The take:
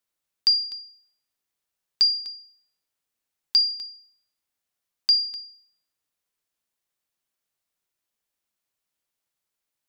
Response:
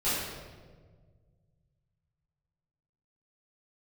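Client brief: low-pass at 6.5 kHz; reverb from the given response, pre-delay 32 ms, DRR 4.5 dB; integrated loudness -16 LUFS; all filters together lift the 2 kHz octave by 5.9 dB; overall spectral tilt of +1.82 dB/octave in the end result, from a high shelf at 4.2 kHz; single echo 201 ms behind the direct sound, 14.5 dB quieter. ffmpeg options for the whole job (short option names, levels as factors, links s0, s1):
-filter_complex "[0:a]lowpass=6500,equalizer=f=2000:t=o:g=8.5,highshelf=f=4200:g=-4.5,aecho=1:1:201:0.188,asplit=2[s0][s1];[1:a]atrim=start_sample=2205,adelay=32[s2];[s1][s2]afir=irnorm=-1:irlink=0,volume=0.178[s3];[s0][s3]amix=inputs=2:normalize=0,volume=2"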